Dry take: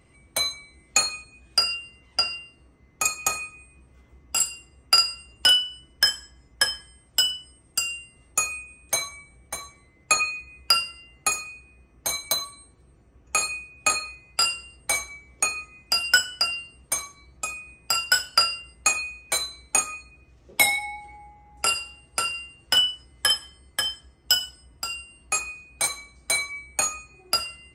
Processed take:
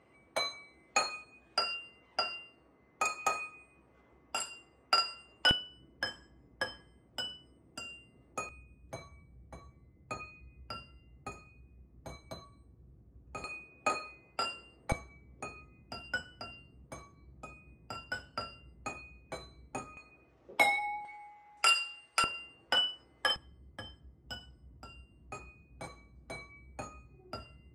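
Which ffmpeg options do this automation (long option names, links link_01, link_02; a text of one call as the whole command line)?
ffmpeg -i in.wav -af "asetnsamples=nb_out_samples=441:pad=0,asendcmd='5.51 bandpass f 290;8.49 bandpass f 110;13.44 bandpass f 410;14.92 bandpass f 150;19.97 bandpass f 630;21.05 bandpass f 2000;22.24 bandpass f 610;23.36 bandpass f 130',bandpass=frequency=720:width_type=q:width=0.62:csg=0" out.wav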